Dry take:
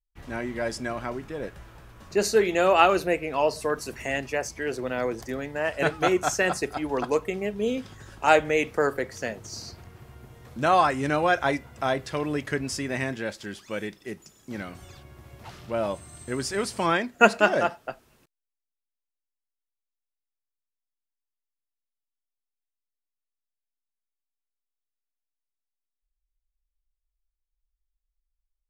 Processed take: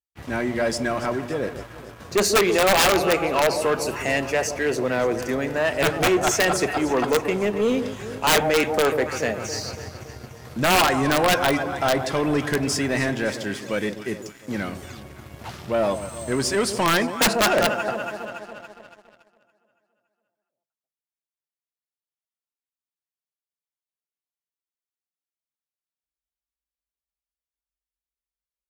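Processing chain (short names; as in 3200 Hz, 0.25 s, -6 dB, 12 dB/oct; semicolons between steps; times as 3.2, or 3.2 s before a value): HPF 67 Hz 24 dB/oct; echo with dull and thin repeats by turns 0.141 s, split 890 Hz, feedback 76%, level -12 dB; wrapped overs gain 13 dB; sample leveller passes 2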